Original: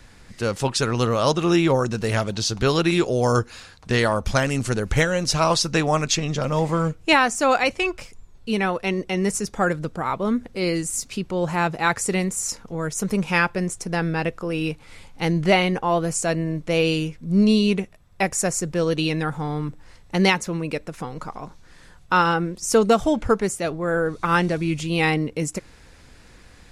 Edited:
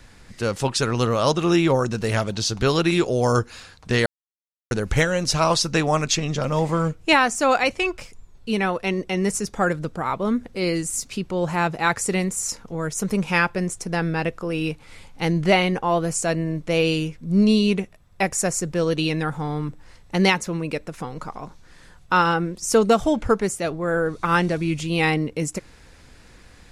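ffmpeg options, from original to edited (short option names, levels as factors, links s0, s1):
-filter_complex "[0:a]asplit=3[s0][s1][s2];[s0]atrim=end=4.06,asetpts=PTS-STARTPTS,afade=t=out:st=4.056:d=0.004:c=hsin[s3];[s1]atrim=start=4.06:end=4.71,asetpts=PTS-STARTPTS,volume=0[s4];[s2]atrim=start=4.71,asetpts=PTS-STARTPTS,afade=t=in:d=0.004:c=hsin[s5];[s3][s4][s5]concat=n=3:v=0:a=1"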